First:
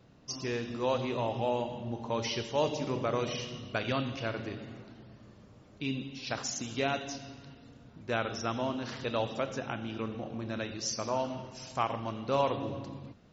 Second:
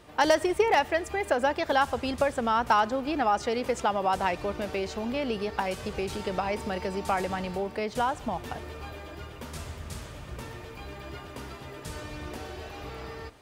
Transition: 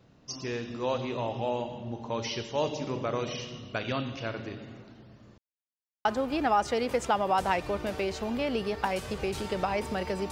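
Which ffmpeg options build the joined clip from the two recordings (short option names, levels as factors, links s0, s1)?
-filter_complex "[0:a]apad=whole_dur=10.31,atrim=end=10.31,asplit=2[s0][s1];[s0]atrim=end=5.38,asetpts=PTS-STARTPTS,afade=t=out:st=5.376:d=0.004:c=hsin[s2];[s1]atrim=start=5.38:end=6.05,asetpts=PTS-STARTPTS,volume=0[s3];[1:a]atrim=start=2.8:end=7.06,asetpts=PTS-STARTPTS,afade=t=in:d=0.004:c=hsin[s4];[s2][s3][s4]concat=n=3:v=0:a=1"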